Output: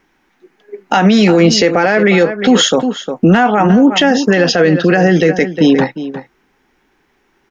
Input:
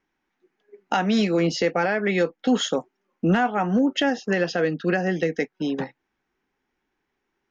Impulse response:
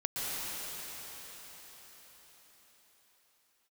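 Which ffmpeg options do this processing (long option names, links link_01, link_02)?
-filter_complex "[0:a]asplit=2[link_01][link_02];[link_02]adelay=355.7,volume=-15dB,highshelf=frequency=4000:gain=-8[link_03];[link_01][link_03]amix=inputs=2:normalize=0,alimiter=level_in=19.5dB:limit=-1dB:release=50:level=0:latency=1,volume=-1dB"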